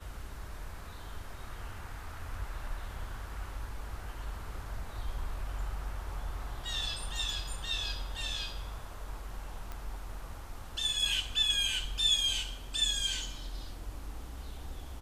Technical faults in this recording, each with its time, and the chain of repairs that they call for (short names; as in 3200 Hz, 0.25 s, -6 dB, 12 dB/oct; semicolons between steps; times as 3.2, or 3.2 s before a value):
9.72 pop -26 dBFS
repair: de-click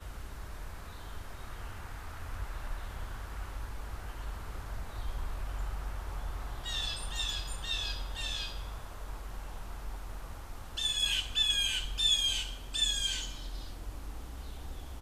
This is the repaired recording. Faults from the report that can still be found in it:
none